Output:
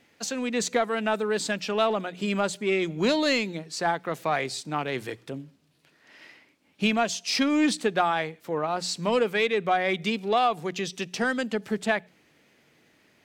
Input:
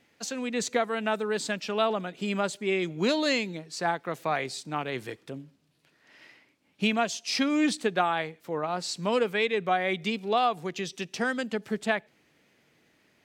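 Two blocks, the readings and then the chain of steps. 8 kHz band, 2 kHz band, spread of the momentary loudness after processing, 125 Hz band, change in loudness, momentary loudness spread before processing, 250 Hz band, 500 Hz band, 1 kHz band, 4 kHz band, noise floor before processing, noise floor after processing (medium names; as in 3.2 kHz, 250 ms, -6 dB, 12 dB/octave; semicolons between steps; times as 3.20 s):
+3.0 dB, +2.0 dB, 8 LU, +2.0 dB, +2.0 dB, 9 LU, +2.5 dB, +2.5 dB, +2.0 dB, +2.0 dB, -67 dBFS, -63 dBFS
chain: hum notches 60/120/180 Hz; in parallel at -6 dB: saturation -26 dBFS, distortion -9 dB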